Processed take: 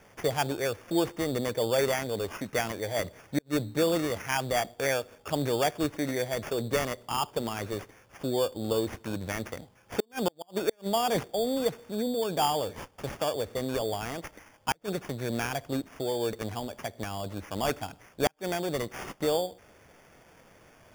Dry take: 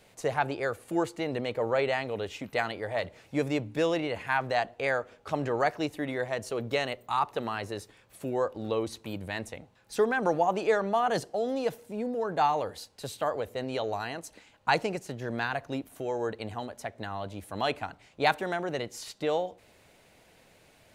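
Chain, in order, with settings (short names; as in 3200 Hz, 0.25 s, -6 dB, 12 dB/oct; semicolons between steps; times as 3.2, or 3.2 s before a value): dynamic EQ 1200 Hz, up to -7 dB, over -42 dBFS, Q 0.92; sample-and-hold 11×; flipped gate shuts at -18 dBFS, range -39 dB; gain +3 dB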